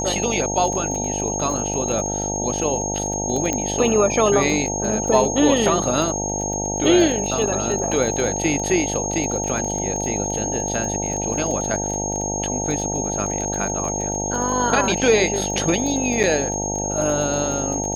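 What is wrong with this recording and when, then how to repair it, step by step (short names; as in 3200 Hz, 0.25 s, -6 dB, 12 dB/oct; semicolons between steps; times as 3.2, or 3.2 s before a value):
buzz 50 Hz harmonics 18 -27 dBFS
crackle 22/s -25 dBFS
tone 6500 Hz -25 dBFS
3.53 pop -8 dBFS
16.23–16.24 gap 6.9 ms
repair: de-click; de-hum 50 Hz, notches 18; notch 6500 Hz, Q 30; interpolate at 16.23, 6.9 ms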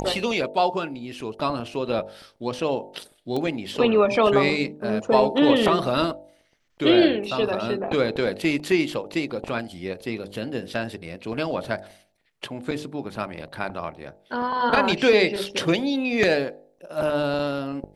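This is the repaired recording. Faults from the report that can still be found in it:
none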